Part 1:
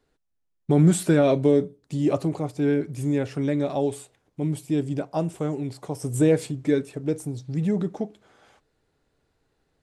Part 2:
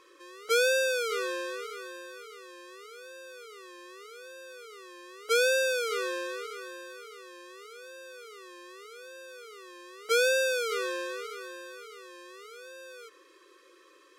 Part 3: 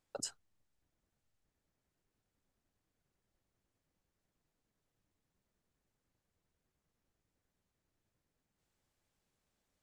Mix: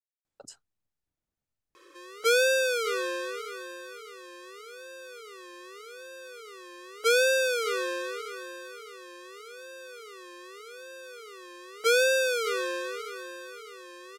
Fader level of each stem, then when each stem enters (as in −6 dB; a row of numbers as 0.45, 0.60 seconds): muted, +2.0 dB, −6.5 dB; muted, 1.75 s, 0.25 s